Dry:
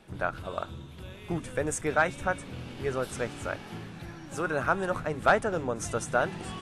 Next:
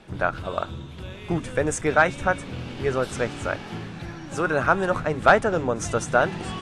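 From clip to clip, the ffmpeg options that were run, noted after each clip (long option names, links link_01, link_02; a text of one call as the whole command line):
ffmpeg -i in.wav -af "lowpass=7800,volume=6.5dB" out.wav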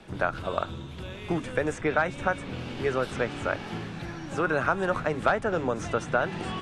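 ffmpeg -i in.wav -filter_complex "[0:a]acrossover=split=180|1300|4000[link_01][link_02][link_03][link_04];[link_01]acompressor=threshold=-38dB:ratio=4[link_05];[link_02]acompressor=threshold=-24dB:ratio=4[link_06];[link_03]acompressor=threshold=-29dB:ratio=4[link_07];[link_04]acompressor=threshold=-53dB:ratio=4[link_08];[link_05][link_06][link_07][link_08]amix=inputs=4:normalize=0" out.wav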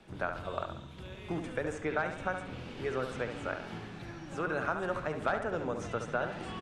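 ffmpeg -i in.wav -filter_complex "[0:a]asplit=2[link_01][link_02];[link_02]adelay=70,lowpass=frequency=3500:poles=1,volume=-7dB,asplit=2[link_03][link_04];[link_04]adelay=70,lowpass=frequency=3500:poles=1,volume=0.46,asplit=2[link_05][link_06];[link_06]adelay=70,lowpass=frequency=3500:poles=1,volume=0.46,asplit=2[link_07][link_08];[link_08]adelay=70,lowpass=frequency=3500:poles=1,volume=0.46,asplit=2[link_09][link_10];[link_10]adelay=70,lowpass=frequency=3500:poles=1,volume=0.46[link_11];[link_01][link_03][link_05][link_07][link_09][link_11]amix=inputs=6:normalize=0,volume=-8dB" out.wav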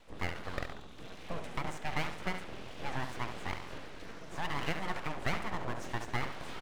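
ffmpeg -i in.wav -af "aeval=exprs='abs(val(0))':channel_layout=same" out.wav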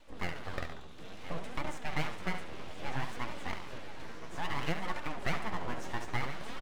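ffmpeg -i in.wav -af "aecho=1:1:1022:0.2,flanger=delay=3.3:depth=9.5:regen=45:speed=0.6:shape=sinusoidal,volume=3.5dB" out.wav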